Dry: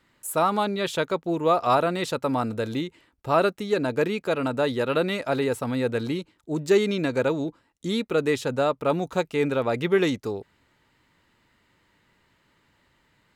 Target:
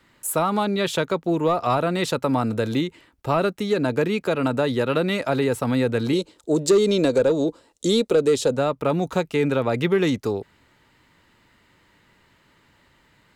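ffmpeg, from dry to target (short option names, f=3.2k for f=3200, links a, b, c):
-filter_complex "[0:a]asettb=1/sr,asplit=3[a][b][c];[a]atrim=end=6.134[d];[b]atrim=start=6.13:end=8.57,asetpts=PTS-STARTPTS,afade=t=in:d=0.004:c=qsin,afade=t=out:st=2.436:d=0.004:c=qsin,equalizer=f=125:t=o:w=1:g=-5,equalizer=f=500:t=o:w=1:g=11,equalizer=f=2k:t=o:w=1:g=-4,equalizer=f=4k:t=o:w=1:g=6,equalizer=f=8k:t=o:w=1:g=10[e];[c]atrim=start=8.566[f];[d][e]acrossfade=d=0.004:c1=hsin:c2=qsin[g];[g][f]acrossfade=d=0.004:c1=qsin:c2=hsin,asoftclip=type=tanh:threshold=-9dB,acrossover=split=240[h][i];[i]acompressor=threshold=-27dB:ratio=2.5[j];[h][j]amix=inputs=2:normalize=0,volume=6dB"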